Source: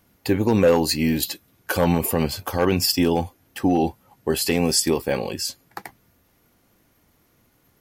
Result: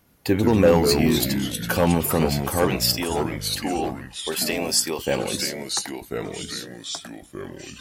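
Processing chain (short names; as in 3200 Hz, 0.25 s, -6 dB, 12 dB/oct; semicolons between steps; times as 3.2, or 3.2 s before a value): 2.67–4.99 HPF 800 Hz 6 dB/oct; echoes that change speed 84 ms, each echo -3 st, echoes 3, each echo -6 dB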